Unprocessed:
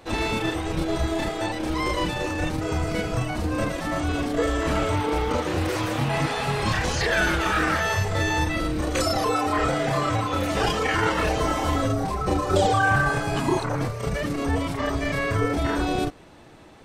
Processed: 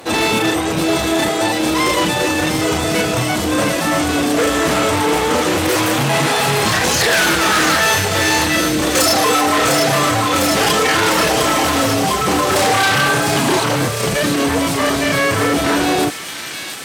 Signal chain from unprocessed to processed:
in parallel at −5.5 dB: sine wavefolder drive 13 dB, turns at −8 dBFS
on the sum: high-pass filter 140 Hz 12 dB per octave
high-shelf EQ 8,500 Hz +11.5 dB
delay with a high-pass on its return 703 ms, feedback 74%, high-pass 2,500 Hz, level −5 dB
level −1 dB

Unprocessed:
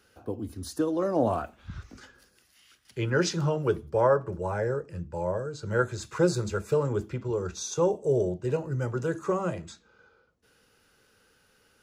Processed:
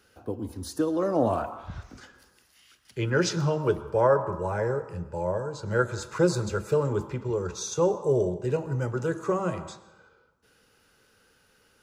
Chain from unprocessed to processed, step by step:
on a send: parametric band 950 Hz +14 dB 0.78 octaves + convolution reverb RT60 0.95 s, pre-delay 70 ms, DRR 11.5 dB
on the sum: level +1 dB

